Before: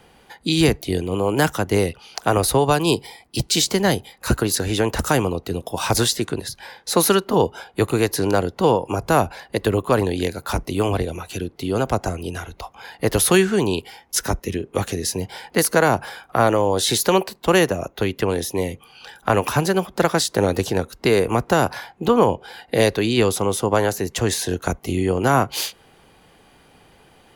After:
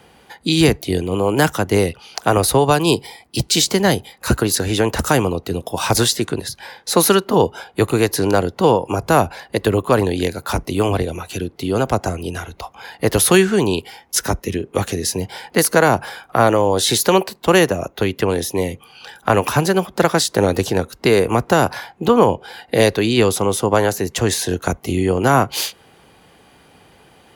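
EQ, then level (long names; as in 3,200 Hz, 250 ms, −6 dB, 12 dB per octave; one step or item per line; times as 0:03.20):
high-pass filter 53 Hz
+3.0 dB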